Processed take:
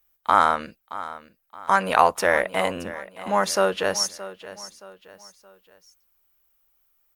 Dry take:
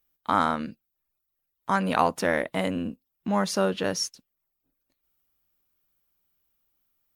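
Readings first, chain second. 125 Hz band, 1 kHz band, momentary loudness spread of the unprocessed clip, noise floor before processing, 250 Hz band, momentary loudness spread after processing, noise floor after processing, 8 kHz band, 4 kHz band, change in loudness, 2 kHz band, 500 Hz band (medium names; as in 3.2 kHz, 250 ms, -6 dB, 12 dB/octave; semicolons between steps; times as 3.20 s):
-4.5 dB, +6.5 dB, 11 LU, -81 dBFS, -5.0 dB, 19 LU, -68 dBFS, +6.0 dB, +4.5 dB, +4.0 dB, +6.5 dB, +4.5 dB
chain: ten-band graphic EQ 125 Hz -12 dB, 250 Hz -12 dB, 4 kHz -4 dB; feedback delay 622 ms, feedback 39%, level -15.5 dB; trim +7 dB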